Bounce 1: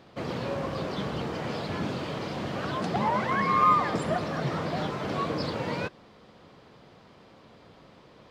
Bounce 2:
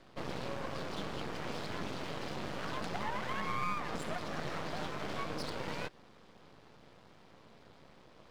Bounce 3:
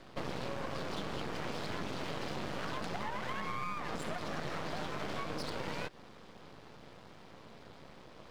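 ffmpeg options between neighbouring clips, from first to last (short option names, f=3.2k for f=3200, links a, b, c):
-filter_complex "[0:a]acrossover=split=200|1100[a][b][c];[a]acompressor=threshold=-41dB:ratio=4[d];[b]acompressor=threshold=-34dB:ratio=4[e];[c]acompressor=threshold=-35dB:ratio=4[f];[d][e][f]amix=inputs=3:normalize=0,aeval=exprs='max(val(0),0)':c=same,volume=-1.5dB"
-af "acompressor=threshold=-38dB:ratio=6,volume=5dB"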